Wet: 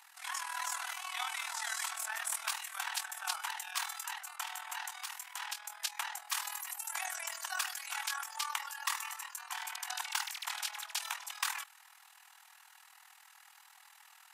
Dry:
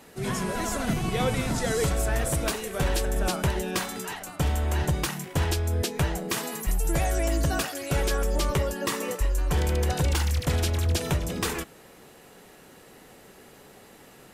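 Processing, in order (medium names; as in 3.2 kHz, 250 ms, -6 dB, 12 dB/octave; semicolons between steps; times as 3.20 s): steep high-pass 800 Hz 72 dB/octave; 4.81–5.76 s: compression, threshold -32 dBFS, peak gain reduction 7 dB; AM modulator 40 Hz, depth 60%; trim -1.5 dB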